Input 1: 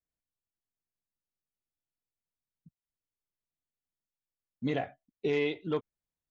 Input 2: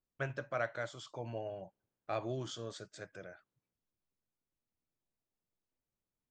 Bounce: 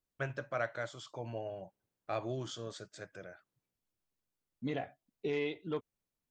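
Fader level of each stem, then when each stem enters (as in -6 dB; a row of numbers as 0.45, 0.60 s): -5.5, +0.5 dB; 0.00, 0.00 s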